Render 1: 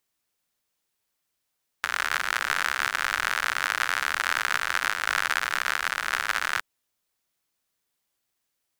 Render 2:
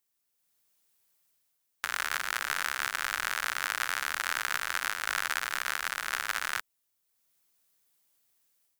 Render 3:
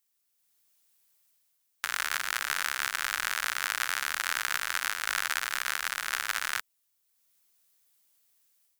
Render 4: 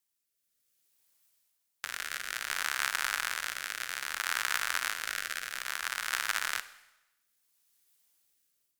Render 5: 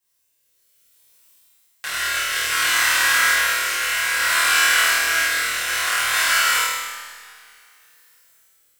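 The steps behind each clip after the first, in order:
high-shelf EQ 7,300 Hz +9.5 dB; automatic gain control gain up to 8 dB; level −7.5 dB
tilt shelving filter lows −3 dB, about 1,400 Hz
rotating-speaker cabinet horn 0.6 Hz; four-comb reverb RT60 0.97 s, combs from 32 ms, DRR 14 dB
flutter between parallel walls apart 4.4 metres, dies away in 1.1 s; coupled-rooms reverb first 0.51 s, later 2.6 s, from −18 dB, DRR −9.5 dB

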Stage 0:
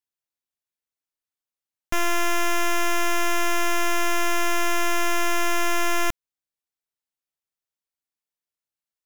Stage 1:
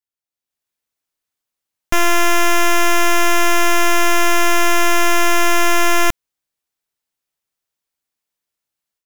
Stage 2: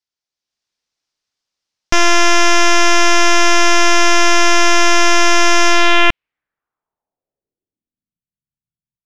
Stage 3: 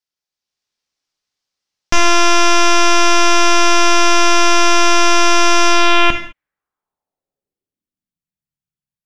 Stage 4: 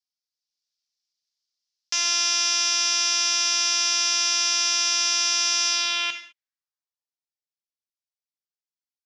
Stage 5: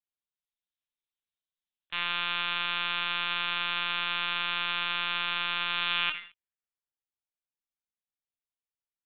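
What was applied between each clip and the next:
automatic gain control gain up to 11.5 dB; level −3 dB
low-pass filter sweep 5,300 Hz → 150 Hz, 0:05.67–0:08.25; level +2.5 dB
reverb whose tail is shaped and stops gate 230 ms falling, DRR 6 dB; level −1 dB
resonant band-pass 5,100 Hz, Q 2.2
linear-prediction vocoder at 8 kHz pitch kept; dynamic equaliser 1,400 Hz, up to +5 dB, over −39 dBFS, Q 0.94; level −4.5 dB

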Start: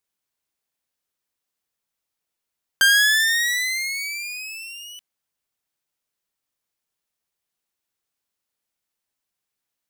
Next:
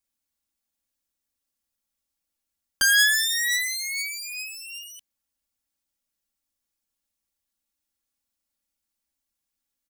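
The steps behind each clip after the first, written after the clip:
bass and treble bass +10 dB, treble +5 dB
comb filter 3.6 ms, depth 95%
level −7.5 dB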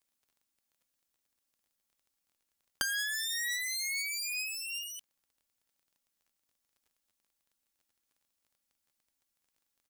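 low-shelf EQ 150 Hz −5.5 dB
downward compressor 10 to 1, threshold −31 dBFS, peak gain reduction 16.5 dB
surface crackle 24 per second −58 dBFS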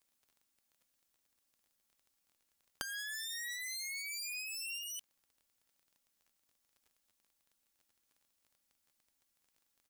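downward compressor 12 to 1, threshold −41 dBFS, peak gain reduction 13.5 dB
level +2.5 dB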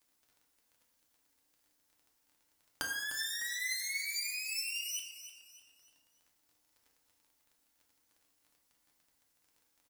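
on a send: repeating echo 302 ms, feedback 38%, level −12 dB
on the sum: feedback delay network reverb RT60 0.96 s, low-frequency decay 0.8×, high-frequency decay 0.5×, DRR 0 dB
level +2 dB

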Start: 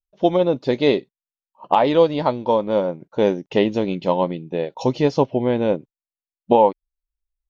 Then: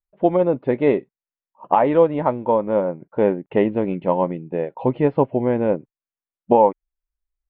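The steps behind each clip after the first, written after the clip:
inverse Chebyshev low-pass filter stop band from 5,500 Hz, stop band 50 dB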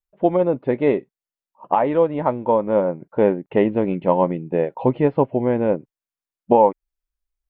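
speech leveller within 4 dB 0.5 s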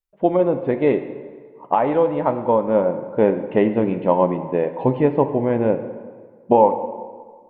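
dense smooth reverb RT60 1.7 s, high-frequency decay 0.7×, DRR 8.5 dB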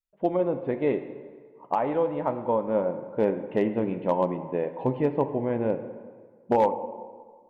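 hard clipping −5.5 dBFS, distortion −28 dB
level −7.5 dB

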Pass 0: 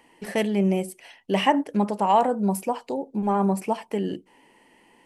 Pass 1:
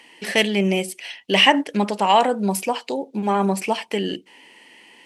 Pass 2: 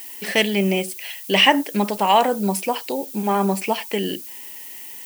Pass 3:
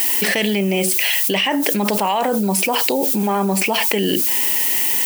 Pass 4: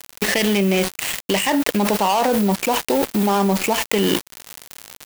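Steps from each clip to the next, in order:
meter weighting curve D; level +3.5 dB
background noise violet −37 dBFS
envelope flattener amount 100%; level −7.5 dB
gap after every zero crossing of 0.11 ms; level +1 dB

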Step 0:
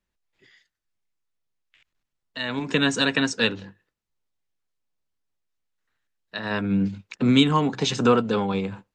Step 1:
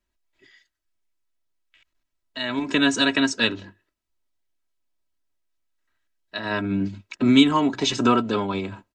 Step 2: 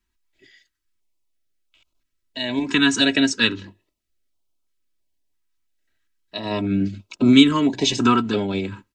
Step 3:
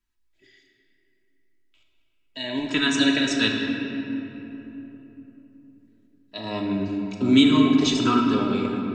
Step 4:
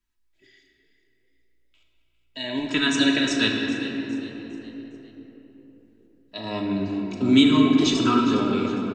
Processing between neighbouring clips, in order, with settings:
comb filter 3.1 ms, depth 63%
notch on a step sequencer 3 Hz 570–1,800 Hz; level +3.5 dB
rectangular room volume 210 cubic metres, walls hard, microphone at 0.47 metres; level −5.5 dB
echo with shifted repeats 408 ms, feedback 41%, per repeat +58 Hz, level −15 dB

